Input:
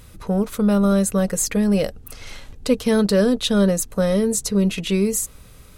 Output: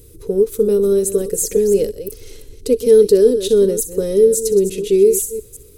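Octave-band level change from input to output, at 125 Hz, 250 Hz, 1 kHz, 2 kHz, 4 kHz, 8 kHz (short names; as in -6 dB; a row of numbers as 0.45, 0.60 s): n/a, -4.0 dB, under -10 dB, under -10 dB, -4.5 dB, +2.5 dB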